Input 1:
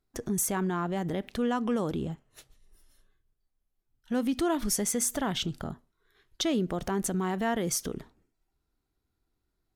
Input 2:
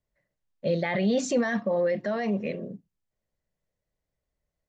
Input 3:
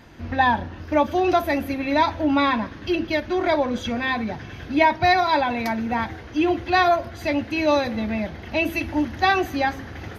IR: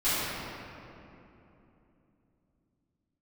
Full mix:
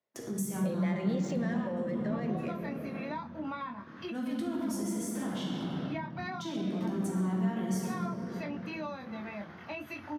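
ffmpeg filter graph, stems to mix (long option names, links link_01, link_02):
-filter_complex "[0:a]agate=range=-33dB:threshold=-57dB:ratio=3:detection=peak,volume=-9.5dB,asplit=3[link_01][link_02][link_03];[link_02]volume=-4.5dB[link_04];[1:a]highpass=300,adynamicsmooth=sensitivity=7:basefreq=4100,volume=1.5dB,asplit=2[link_05][link_06];[link_06]volume=-20dB[link_07];[2:a]equalizer=frequency=1200:width_type=o:width=0.89:gain=13,flanger=delay=22.5:depth=2.4:speed=0.91,adelay=1150,volume=-11dB[link_08];[link_03]apad=whole_len=499904[link_09];[link_08][link_09]sidechaincompress=threshold=-47dB:ratio=8:attack=16:release=147[link_10];[3:a]atrim=start_sample=2205[link_11];[link_04][link_07]amix=inputs=2:normalize=0[link_12];[link_12][link_11]afir=irnorm=-1:irlink=0[link_13];[link_01][link_05][link_10][link_13]amix=inputs=4:normalize=0,highpass=frequency=110:width=0.5412,highpass=frequency=110:width=1.3066,acrossover=split=230[link_14][link_15];[link_15]acompressor=threshold=-38dB:ratio=6[link_16];[link_14][link_16]amix=inputs=2:normalize=0"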